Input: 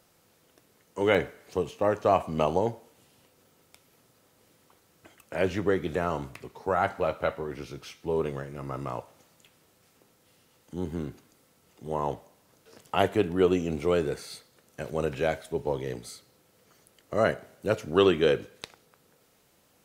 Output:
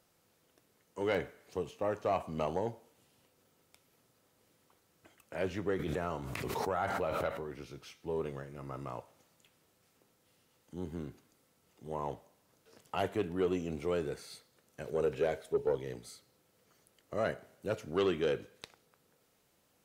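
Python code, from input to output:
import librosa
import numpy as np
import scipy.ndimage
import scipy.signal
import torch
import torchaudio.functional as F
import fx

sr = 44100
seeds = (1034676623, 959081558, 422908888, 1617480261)

y = fx.peak_eq(x, sr, hz=440.0, db=11.0, octaves=0.45, at=(14.87, 15.75))
y = 10.0 ** (-14.0 / 20.0) * np.tanh(y / 10.0 ** (-14.0 / 20.0))
y = fx.pre_swell(y, sr, db_per_s=20.0, at=(5.79, 7.54))
y = F.gain(torch.from_numpy(y), -7.5).numpy()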